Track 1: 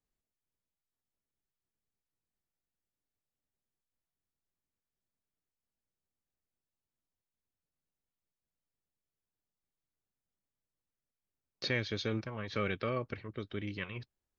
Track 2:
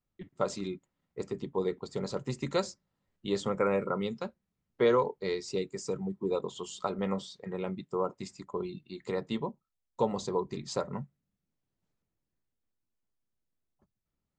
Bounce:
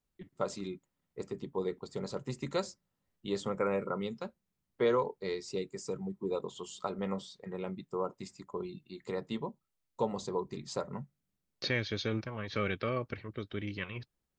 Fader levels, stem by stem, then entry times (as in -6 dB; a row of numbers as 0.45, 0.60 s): +1.0, -3.5 dB; 0.00, 0.00 s